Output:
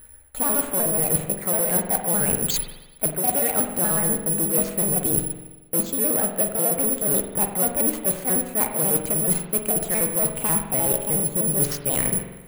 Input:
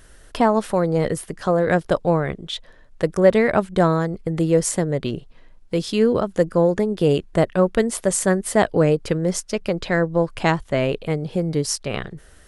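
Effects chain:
pitch shifter gated in a rhythm +4.5 semitones, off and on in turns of 61 ms
noise that follows the level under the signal 14 dB
high-frequency loss of the air 230 metres
bad sample-rate conversion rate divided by 4×, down filtered, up zero stuff
in parallel at −4 dB: wave folding −10 dBFS
on the sum: noise gate −29 dBFS, range −15 dB
reversed playback
downward compressor 10 to 1, threshold −23 dBFS, peak gain reduction 20.5 dB
reversed playback
spring reverb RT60 1.1 s, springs 45 ms, chirp 55 ms, DRR 4.5 dB
level +6 dB

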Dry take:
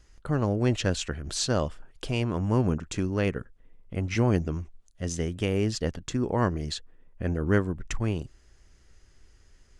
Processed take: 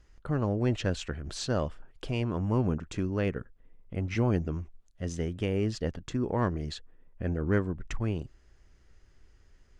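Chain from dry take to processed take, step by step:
in parallel at −7.5 dB: soft clipping −21 dBFS, distortion −11 dB
on the sum: high-shelf EQ 5,000 Hz −11 dB
level −5 dB

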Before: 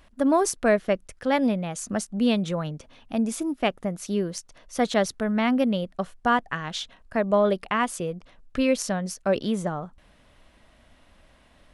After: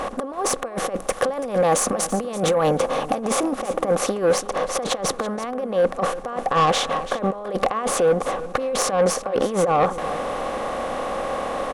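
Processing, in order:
compressor on every frequency bin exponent 0.6
0:00.74–0:03.17: high-shelf EQ 9,200 Hz +10.5 dB
compressor whose output falls as the input rises −26 dBFS, ratio −0.5
hollow resonant body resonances 520/770/1,100 Hz, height 16 dB, ringing for 30 ms
soft clipping −11.5 dBFS, distortion −13 dB
single-tap delay 334 ms −14.5 dB

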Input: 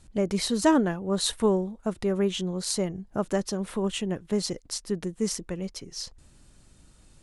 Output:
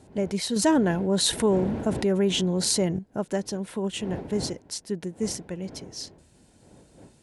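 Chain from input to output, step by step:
wind on the microphone 380 Hz −42 dBFS
high-pass filter 70 Hz
notch filter 1,200 Hz, Q 5.1
0:00.56–0:02.99: envelope flattener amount 50%
level −1 dB

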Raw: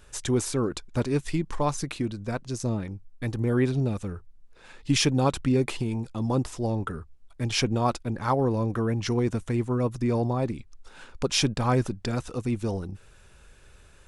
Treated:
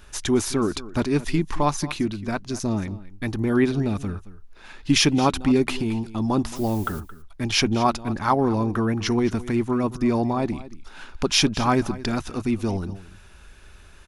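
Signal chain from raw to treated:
thirty-one-band graphic EQ 125 Hz −10 dB, 500 Hz −10 dB, 8,000 Hz −8 dB
0:06.55–0:06.99: background noise blue −50 dBFS
on a send: single-tap delay 222 ms −17 dB
on the sum: level +6 dB

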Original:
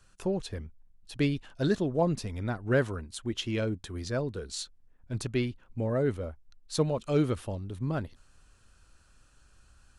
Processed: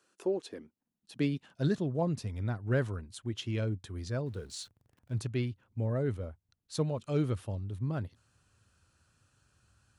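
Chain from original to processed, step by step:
0:04.26–0:05.20: converter with a step at zero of −51 dBFS
high-pass filter sweep 330 Hz → 100 Hz, 0:00.40–0:02.13
level −6 dB

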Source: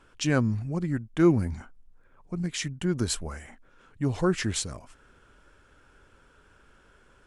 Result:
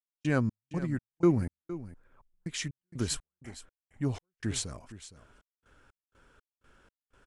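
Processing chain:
gate pattern ".x.x.x.xx.x" 61 BPM −60 dB
on a send: single-tap delay 463 ms −15 dB
on the sum: level −3.5 dB

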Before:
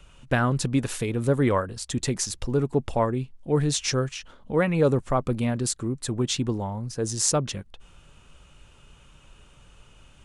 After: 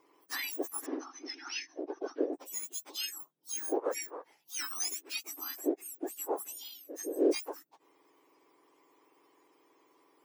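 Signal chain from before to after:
frequency axis turned over on the octave scale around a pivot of 1,700 Hz
0:00.86–0:02.33: linear-phase brick-wall low-pass 6,300 Hz
level −8.5 dB

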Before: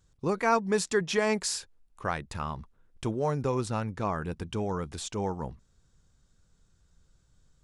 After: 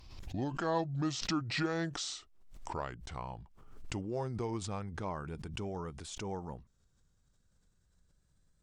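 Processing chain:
gliding playback speed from 68% → 109%
background raised ahead of every attack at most 55 dB per second
level −8.5 dB

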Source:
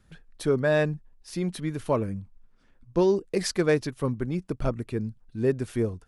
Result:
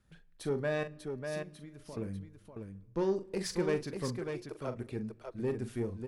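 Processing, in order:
0:00.83–0:01.97: downward compressor 10 to 1, threshold −37 dBFS, peak gain reduction 17.5 dB
0:04.19–0:04.75: Butterworth high-pass 340 Hz 72 dB per octave
tube saturation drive 16 dB, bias 0.3
multi-tap delay 42/594 ms −10/−6 dB
on a send at −21 dB: convolution reverb RT60 1.4 s, pre-delay 5 ms
on the sum: level −8 dB

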